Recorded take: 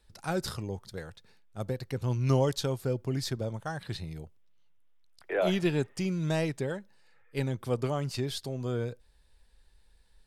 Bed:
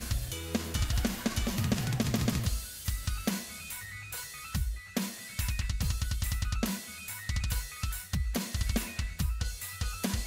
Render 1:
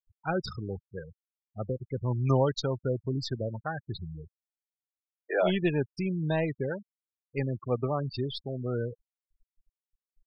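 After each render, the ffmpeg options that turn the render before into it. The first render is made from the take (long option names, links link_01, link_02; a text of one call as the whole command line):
ffmpeg -i in.wav -af "afftfilt=real='re*gte(hypot(re,im),0.0282)':imag='im*gte(hypot(re,im),0.0282)':win_size=1024:overlap=0.75,equalizer=frequency=1300:width_type=o:width=2.1:gain=4" out.wav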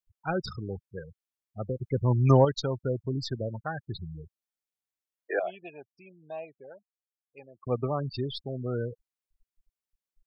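ffmpeg -i in.wav -filter_complex "[0:a]asettb=1/sr,asplit=3[link_01][link_02][link_03];[link_01]atrim=end=1.794[link_04];[link_02]atrim=start=1.79:end=2.45,asetpts=PTS-STARTPTS,afade=type=in:duration=0.004:curve=qsin,afade=type=out:start_time=0.656:duration=0.004:curve=qsin,acontrast=34[link_05];[link_03]atrim=start=2.446[link_06];[link_04][link_05]acrossfade=duration=0.004:curve1=hsin:curve2=qsin[link_07];[link_07][link_06]acrossfade=duration=0.004:curve1=qsin:curve2=hsin,asettb=1/sr,asplit=3[link_08][link_09][link_10];[link_08]atrim=end=5.394[link_11];[link_09]atrim=start=5.39:end=7.67,asetpts=PTS-STARTPTS,afade=type=in:duration=0.004:curve=qsin,afade=type=out:start_time=2.276:duration=0.004:curve=qsin,asplit=3[link_12][link_13][link_14];[link_12]bandpass=frequency=730:width_type=q:width=8,volume=0dB[link_15];[link_13]bandpass=frequency=1090:width_type=q:width=8,volume=-6dB[link_16];[link_14]bandpass=frequency=2440:width_type=q:width=8,volume=-9dB[link_17];[link_15][link_16][link_17]amix=inputs=3:normalize=0[link_18];[link_10]atrim=start=7.666[link_19];[link_11][link_18]acrossfade=duration=0.004:curve1=hsin:curve2=qsin[link_20];[link_20][link_19]acrossfade=duration=0.004:curve1=qsin:curve2=hsin" out.wav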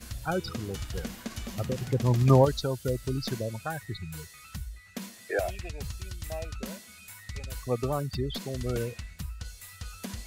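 ffmpeg -i in.wav -i bed.wav -filter_complex "[1:a]volume=-6.5dB[link_01];[0:a][link_01]amix=inputs=2:normalize=0" out.wav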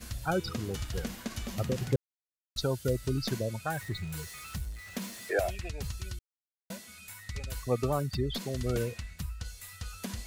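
ffmpeg -i in.wav -filter_complex "[0:a]asettb=1/sr,asplit=3[link_01][link_02][link_03];[link_01]atrim=end=3.684[link_04];[link_02]atrim=start=3.68:end=5.33,asetpts=PTS-STARTPTS,afade=type=in:duration=0.004:curve=qsin,afade=type=out:start_time=1.646:duration=0.004:curve=qsin,aeval=exprs='val(0)+0.5*0.00562*sgn(val(0))':channel_layout=same[link_05];[link_03]atrim=start=5.326[link_06];[link_04][link_05]acrossfade=duration=0.004:curve1=hsin:curve2=qsin[link_07];[link_07][link_06]acrossfade=duration=0.004:curve1=qsin:curve2=hsin,asplit=5[link_08][link_09][link_10][link_11][link_12];[link_08]atrim=end=1.96,asetpts=PTS-STARTPTS,afade=type=out:start_time=1.956:duration=0.004:curve=hsin[link_13];[link_09]atrim=start=1.96:end=2.56,asetpts=PTS-STARTPTS,volume=0[link_14];[link_10]atrim=start=2.56:end=6.19,asetpts=PTS-STARTPTS,afade=type=in:duration=0.004:curve=hsin,afade=type=out:start_time=3.626:duration=0.004:curve=hsin[link_15];[link_11]atrim=start=6.19:end=6.7,asetpts=PTS-STARTPTS,volume=0[link_16];[link_12]atrim=start=6.7,asetpts=PTS-STARTPTS,afade=type=in:duration=0.004:curve=hsin[link_17];[link_13][link_14][link_15][link_16][link_17]concat=n=5:v=0:a=1" out.wav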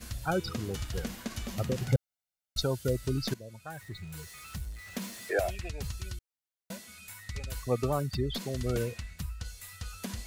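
ffmpeg -i in.wav -filter_complex "[0:a]asettb=1/sr,asplit=3[link_01][link_02][link_03];[link_01]atrim=end=1.884[link_04];[link_02]atrim=start=1.88:end=2.63,asetpts=PTS-STARTPTS,afade=type=in:duration=0.004:curve=qsin,afade=type=out:start_time=0.746:duration=0.004:curve=qsin,aecho=1:1:1.4:0.92,atrim=end_sample=33075[link_05];[link_03]atrim=start=2.626[link_06];[link_04][link_05]acrossfade=duration=0.004:curve1=hsin:curve2=qsin[link_07];[link_07][link_06]acrossfade=duration=0.004:curve1=qsin:curve2=hsin,asplit=2[link_08][link_09];[link_08]atrim=end=3.34,asetpts=PTS-STARTPTS,afade=type=out:start_time=3.336:duration=0.004:curve=hsin:silence=0.158489[link_10];[link_09]atrim=start=3.34,asetpts=PTS-STARTPTS,afade=type=in:duration=1.58:silence=0.158489[link_11];[link_10][link_11]concat=n=2:v=0:a=1" out.wav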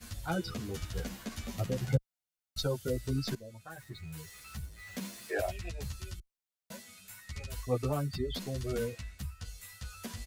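ffmpeg -i in.wav -filter_complex "[0:a]acrossover=split=350|560|5700[link_01][link_02][link_03][link_04];[link_03]asoftclip=type=hard:threshold=-28dB[link_05];[link_01][link_02][link_05][link_04]amix=inputs=4:normalize=0,asplit=2[link_06][link_07];[link_07]adelay=10.9,afreqshift=1.5[link_08];[link_06][link_08]amix=inputs=2:normalize=1" out.wav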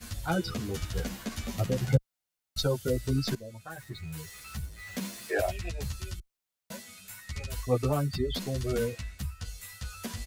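ffmpeg -i in.wav -af "volume=4.5dB" out.wav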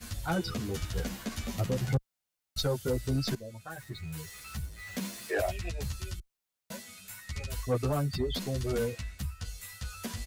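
ffmpeg -i in.wav -af "asoftclip=type=tanh:threshold=-21dB" out.wav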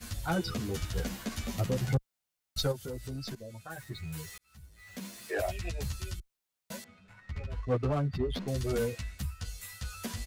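ffmpeg -i in.wav -filter_complex "[0:a]asplit=3[link_01][link_02][link_03];[link_01]afade=type=out:start_time=2.71:duration=0.02[link_04];[link_02]acompressor=threshold=-40dB:ratio=2.5:attack=3.2:release=140:knee=1:detection=peak,afade=type=in:start_time=2.71:duration=0.02,afade=type=out:start_time=3.69:duration=0.02[link_05];[link_03]afade=type=in:start_time=3.69:duration=0.02[link_06];[link_04][link_05][link_06]amix=inputs=3:normalize=0,asettb=1/sr,asplit=3[link_07][link_08][link_09];[link_07]atrim=end=6.844[link_10];[link_08]atrim=start=6.84:end=8.48,asetpts=PTS-STARTPTS,afade=type=in:duration=0.004:curve=qsin,afade=type=out:start_time=1.636:duration=0.004:curve=qsin,adynamicsmooth=sensitivity=6:basefreq=1300[link_11];[link_09]atrim=start=8.476[link_12];[link_10][link_11]acrossfade=duration=0.004:curve1=hsin:curve2=qsin[link_13];[link_13][link_12]acrossfade=duration=0.004:curve1=qsin:curve2=hsin,asplit=2[link_14][link_15];[link_14]atrim=end=4.38,asetpts=PTS-STARTPTS,afade=type=out:start_time=4.376:duration=0.004:curve=hsin[link_16];[link_15]atrim=start=4.38,asetpts=PTS-STARTPTS,afade=type=in:duration=1.31[link_17];[link_16][link_17]concat=n=2:v=0:a=1" out.wav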